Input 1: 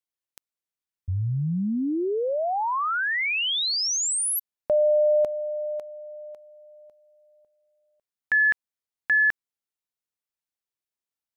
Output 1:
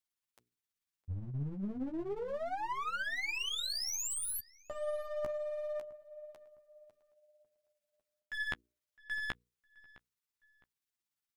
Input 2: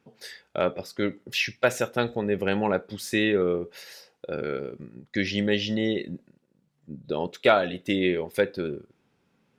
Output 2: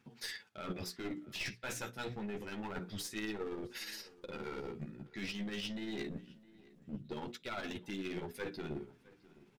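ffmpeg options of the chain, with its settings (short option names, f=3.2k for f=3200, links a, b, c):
-filter_complex "[0:a]equalizer=f=570:t=o:w=0.98:g=-10,bandreject=f=60:t=h:w=6,bandreject=f=120:t=h:w=6,bandreject=f=180:t=h:w=6,bandreject=f=240:t=h:w=6,bandreject=f=300:t=h:w=6,bandreject=f=360:t=h:w=6,bandreject=f=420:t=h:w=6,bandreject=f=480:t=h:w=6,areverse,acompressor=threshold=-34dB:ratio=16:attack=4.3:release=290:knee=1:detection=peak,areverse,tremolo=f=17:d=0.41,aeval=exprs='clip(val(0),-1,0.00841)':c=same,flanger=delay=8.2:depth=7.1:regen=-9:speed=0.27:shape=sinusoidal,asplit=2[a][b];[b]adelay=660,lowpass=f=3.1k:p=1,volume=-21dB,asplit=2[c][d];[d]adelay=660,lowpass=f=3.1k:p=1,volume=0.33[e];[a][c][e]amix=inputs=3:normalize=0,volume=5.5dB"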